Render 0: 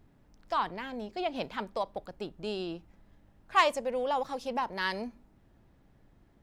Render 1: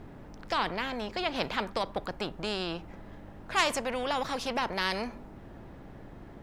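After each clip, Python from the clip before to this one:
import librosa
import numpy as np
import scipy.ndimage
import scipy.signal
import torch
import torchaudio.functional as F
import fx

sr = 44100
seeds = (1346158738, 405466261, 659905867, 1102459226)

y = fx.high_shelf(x, sr, hz=3200.0, db=-11.5)
y = fx.spectral_comp(y, sr, ratio=2.0)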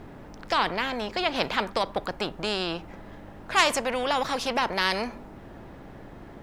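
y = fx.low_shelf(x, sr, hz=250.0, db=-4.5)
y = y * 10.0 ** (5.5 / 20.0)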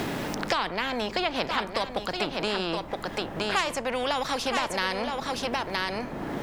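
y = x + 10.0 ** (-7.5 / 20.0) * np.pad(x, (int(969 * sr / 1000.0), 0))[:len(x)]
y = fx.band_squash(y, sr, depth_pct=100)
y = y * 10.0 ** (-2.0 / 20.0)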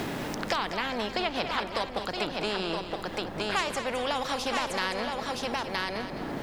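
y = fx.echo_feedback(x, sr, ms=210, feedback_pct=44, wet_db=-9.5)
y = y * 10.0 ** (-2.5 / 20.0)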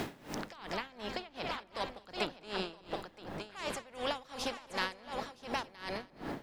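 y = x * 10.0 ** (-22 * (0.5 - 0.5 * np.cos(2.0 * np.pi * 2.7 * np.arange(len(x)) / sr)) / 20.0)
y = y * 10.0 ** (-3.0 / 20.0)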